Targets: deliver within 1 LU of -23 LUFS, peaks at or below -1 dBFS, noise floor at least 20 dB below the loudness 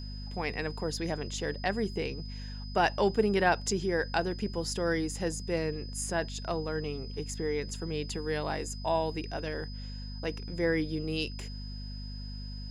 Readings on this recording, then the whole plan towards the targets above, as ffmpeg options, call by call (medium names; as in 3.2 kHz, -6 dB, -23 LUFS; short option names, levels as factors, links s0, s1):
hum 50 Hz; highest harmonic 250 Hz; hum level -37 dBFS; steady tone 5 kHz; tone level -47 dBFS; loudness -32.5 LUFS; peak level -13.5 dBFS; loudness target -23.0 LUFS
-> -af "bandreject=f=50:t=h:w=4,bandreject=f=100:t=h:w=4,bandreject=f=150:t=h:w=4,bandreject=f=200:t=h:w=4,bandreject=f=250:t=h:w=4"
-af "bandreject=f=5000:w=30"
-af "volume=2.99"